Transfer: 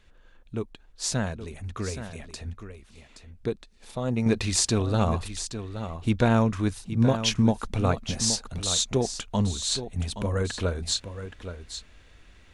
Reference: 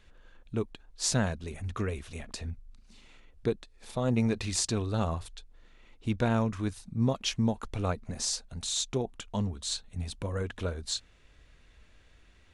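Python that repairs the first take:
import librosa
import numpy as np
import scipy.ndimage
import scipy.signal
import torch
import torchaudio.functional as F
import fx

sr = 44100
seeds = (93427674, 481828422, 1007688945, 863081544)

y = fx.fix_echo_inverse(x, sr, delay_ms=822, level_db=-10.5)
y = fx.fix_level(y, sr, at_s=4.26, step_db=-6.0)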